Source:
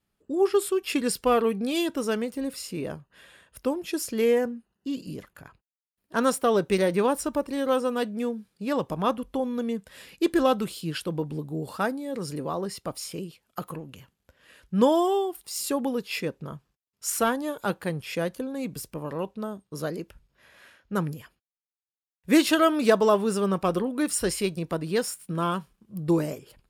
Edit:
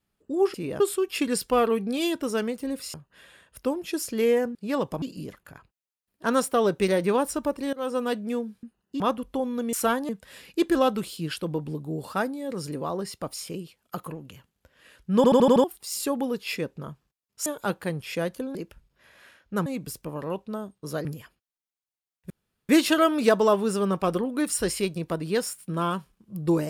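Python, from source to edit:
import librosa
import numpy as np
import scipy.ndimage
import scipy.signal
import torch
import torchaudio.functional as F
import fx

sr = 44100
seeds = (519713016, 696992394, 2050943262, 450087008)

y = fx.edit(x, sr, fx.move(start_s=2.68, length_s=0.26, to_s=0.54),
    fx.swap(start_s=4.55, length_s=0.37, other_s=8.53, other_length_s=0.47),
    fx.fade_in_from(start_s=7.63, length_s=0.25, floor_db=-22.0),
    fx.stutter_over(start_s=14.8, slice_s=0.08, count=6),
    fx.move(start_s=17.1, length_s=0.36, to_s=9.73),
    fx.move(start_s=19.94, length_s=1.11, to_s=18.55),
    fx.insert_room_tone(at_s=22.3, length_s=0.39), tone=tone)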